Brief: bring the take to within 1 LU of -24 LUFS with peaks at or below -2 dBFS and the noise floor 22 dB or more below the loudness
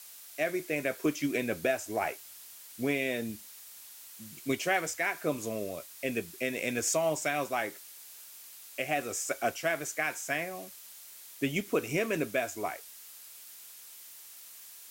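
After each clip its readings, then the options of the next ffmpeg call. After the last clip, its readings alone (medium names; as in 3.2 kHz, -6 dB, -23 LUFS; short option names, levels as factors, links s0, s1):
noise floor -50 dBFS; noise floor target -55 dBFS; loudness -32.5 LUFS; peak level -15.5 dBFS; loudness target -24.0 LUFS
-> -af "afftdn=nr=6:nf=-50"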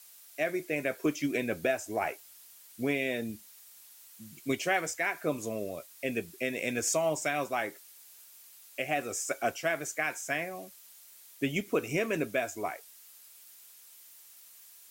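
noise floor -55 dBFS; loudness -32.5 LUFS; peak level -15.5 dBFS; loudness target -24.0 LUFS
-> -af "volume=2.66"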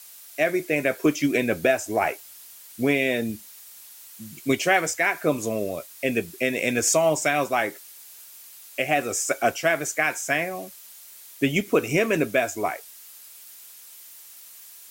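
loudness -24.0 LUFS; peak level -7.0 dBFS; noise floor -46 dBFS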